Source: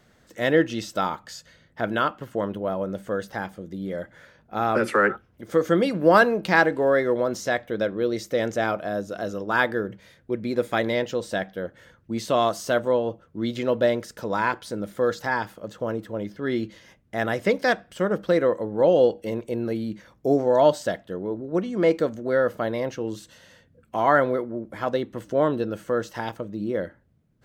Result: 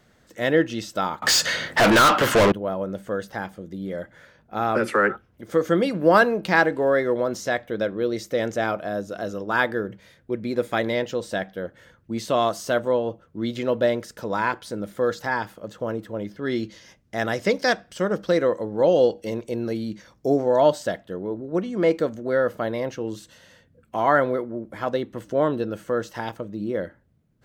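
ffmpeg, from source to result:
-filter_complex "[0:a]asettb=1/sr,asplit=3[a][b][c];[a]atrim=end=1.224[d];[b]atrim=start=1.22:end=2.52,asetpts=PTS-STARTPTS,afade=t=in:d=0.004:c=qsin,afade=t=out:st=1.296:d=0.004:c=qsin,asplit=2[e][f];[f]highpass=f=720:p=1,volume=38dB,asoftclip=type=tanh:threshold=-8.5dB[g];[e][g]amix=inputs=2:normalize=0,lowpass=f=7.3k:p=1,volume=-6dB[h];[c]atrim=start=2.516[i];[d][h]acrossfade=d=0.004:c1=hsin:c2=qsin[j];[j][i]acrossfade=d=0.004:c1=qsin:c2=hsin,asettb=1/sr,asplit=3[k][l][m];[k]atrim=end=16.454[n];[l]atrim=start=16.45:end=20.3,asetpts=PTS-STARTPTS,afade=t=in:d=0.004:c=qsin,afade=t=out:st=3.846:d=0.004:c=qsin,equalizer=f=5.5k:w=1.4:g=8[o];[m]atrim=start=20.296[p];[n][o]acrossfade=d=0.004:c1=hsin:c2=qsin[q];[q][p]acrossfade=d=0.004:c1=qsin:c2=hsin"

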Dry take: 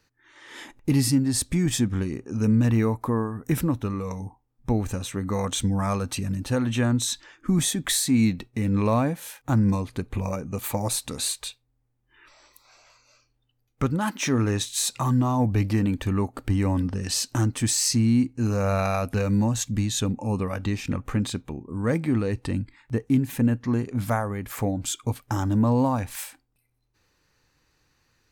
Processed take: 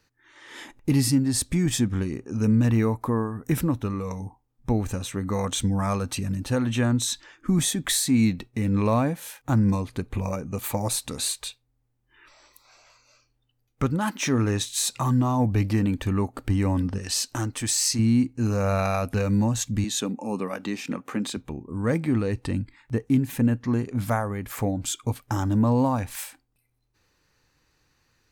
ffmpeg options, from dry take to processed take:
-filter_complex "[0:a]asettb=1/sr,asplit=3[a][b][c];[a]atrim=end=16.984[d];[b]atrim=start=16.98:end=17.99,asetpts=PTS-STARTPTS,afade=t=in:d=0.004:c=qsin,afade=t=out:st=1.006:d=0.004:c=qsin,equalizer=f=160:t=o:w=1.8:g=-8.5[e];[c]atrim=start=17.986[f];[d][e]acrossfade=d=0.004:c1=hsin:c2=qsin[g];[g][f]acrossfade=d=0.004:c1=qsin:c2=hsin,asettb=1/sr,asplit=3[h][i][j];[h]atrim=end=19.844[k];[i]atrim=start=19.84:end=21.37,asetpts=PTS-STARTPTS,afade=t=in:d=0.004:c=qsin,afade=t=out:st=1.526:d=0.004:c=qsin,highpass=f=190:w=0.5412,highpass=f=190:w=1.3066[l];[j]atrim=start=21.366[m];[k][l]acrossfade=d=0.004:c1=hsin:c2=qsin[n];[n][m]acrossfade=d=0.004:c1=qsin:c2=hsin"

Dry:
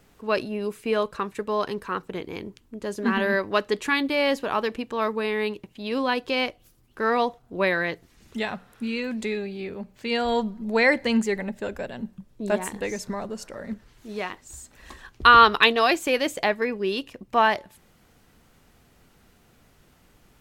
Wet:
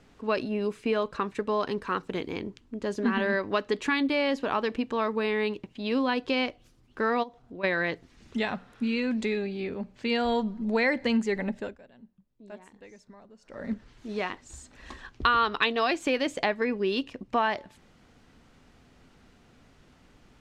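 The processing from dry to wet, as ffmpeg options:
-filter_complex "[0:a]asettb=1/sr,asplit=3[a][b][c];[a]atrim=end=1.874[d];[b]atrim=start=1.87:end=2.33,asetpts=PTS-STARTPTS,afade=t=in:d=0.004:c=qsin,afade=t=out:st=0.456:d=0.004:c=qsin,highshelf=f=4.1k:g=7.5[e];[c]atrim=start=2.326[f];[d][e]acrossfade=d=0.004:c1=hsin:c2=qsin[g];[g][f]acrossfade=d=0.004:c1=qsin:c2=hsin,asplit=3[h][i][j];[h]afade=t=out:st=7.22:d=0.02[k];[i]acompressor=threshold=-44dB:ratio=2.5:attack=3.2:release=140:knee=1:detection=peak,afade=t=in:st=7.22:d=0.02,afade=t=out:st=7.63:d=0.02[l];[j]afade=t=in:st=7.63:d=0.02[m];[k][l][m]amix=inputs=3:normalize=0,asplit=3[n][o][p];[n]atrim=end=11.77,asetpts=PTS-STARTPTS,afade=t=out:st=11.54:d=0.23:silence=0.0944061[q];[o]atrim=start=11.77:end=13.43,asetpts=PTS-STARTPTS,volume=-20.5dB[r];[p]atrim=start=13.43,asetpts=PTS-STARTPTS,afade=t=in:d=0.23:silence=0.0944061[s];[q][r][s]concat=n=3:v=0:a=1,lowpass=6.1k,equalizer=f=260:t=o:w=0.31:g=5,acompressor=threshold=-23dB:ratio=3"

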